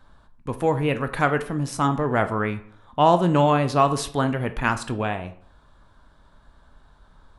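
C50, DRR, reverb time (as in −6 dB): 14.0 dB, 9.0 dB, 0.55 s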